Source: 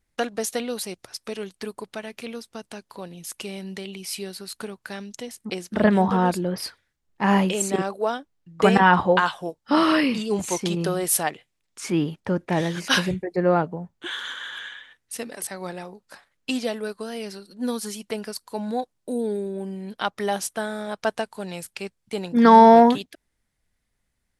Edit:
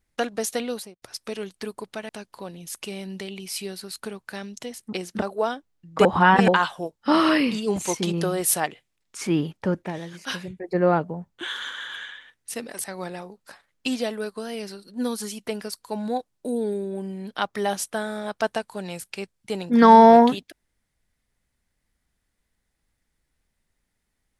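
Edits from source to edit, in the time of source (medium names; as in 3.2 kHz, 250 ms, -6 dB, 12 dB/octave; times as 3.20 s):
0.70–1.02 s: studio fade out
2.09–2.66 s: delete
5.79–7.85 s: delete
8.68–9.11 s: reverse
12.40–13.35 s: dip -10.5 dB, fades 0.16 s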